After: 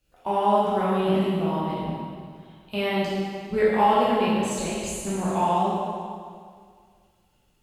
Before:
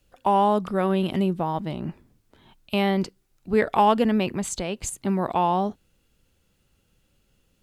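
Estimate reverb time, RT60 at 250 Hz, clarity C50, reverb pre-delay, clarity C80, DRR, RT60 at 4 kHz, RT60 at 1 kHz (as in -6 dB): 2.0 s, 2.0 s, -2.5 dB, 5 ms, -0.5 dB, -9.0 dB, 1.9 s, 2.0 s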